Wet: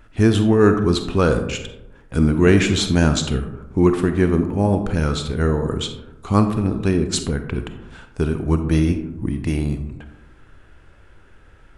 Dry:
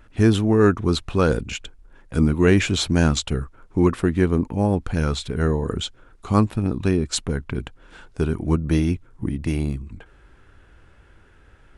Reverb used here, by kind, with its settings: algorithmic reverb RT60 1 s, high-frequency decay 0.35×, pre-delay 5 ms, DRR 7 dB; trim +1.5 dB

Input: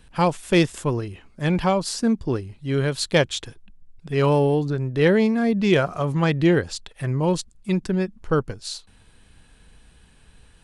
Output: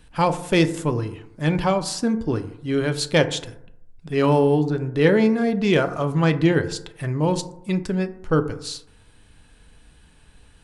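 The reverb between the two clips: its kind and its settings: FDN reverb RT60 0.76 s, low-frequency decay 1×, high-frequency decay 0.35×, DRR 8.5 dB

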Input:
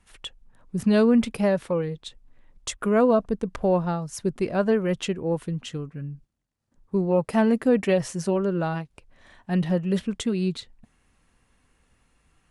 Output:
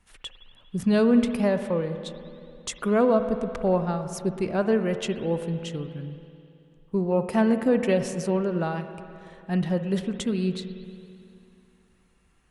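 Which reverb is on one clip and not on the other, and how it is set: spring tank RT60 2.6 s, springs 54/58 ms, chirp 65 ms, DRR 8.5 dB; trim -1.5 dB

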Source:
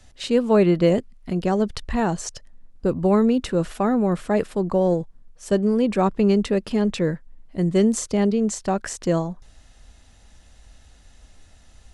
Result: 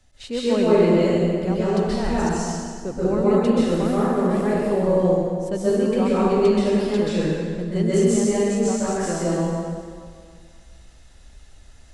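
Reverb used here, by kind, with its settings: plate-style reverb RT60 2 s, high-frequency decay 0.85×, pre-delay 115 ms, DRR -9.5 dB; trim -8.5 dB

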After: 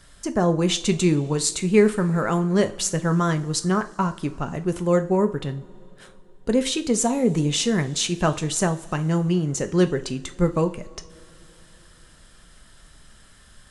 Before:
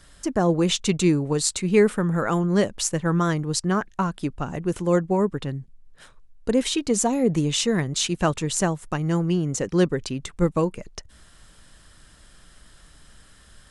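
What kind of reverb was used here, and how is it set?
two-slope reverb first 0.36 s, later 3.6 s, from -22 dB, DRR 8 dB

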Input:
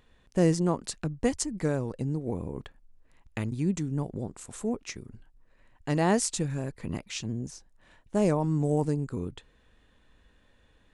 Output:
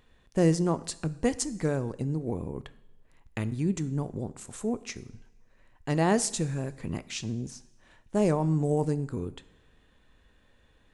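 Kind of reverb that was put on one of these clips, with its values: two-slope reverb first 0.7 s, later 1.8 s, from -16 dB, DRR 14 dB

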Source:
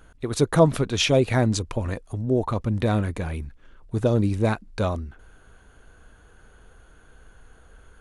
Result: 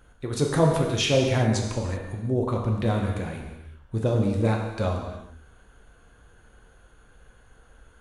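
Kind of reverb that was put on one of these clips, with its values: gated-style reverb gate 410 ms falling, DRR 0 dB; trim -4.5 dB

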